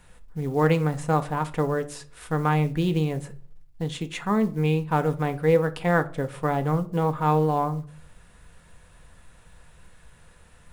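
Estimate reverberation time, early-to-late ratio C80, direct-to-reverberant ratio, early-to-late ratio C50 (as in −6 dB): 0.50 s, 22.5 dB, 8.0 dB, 18.0 dB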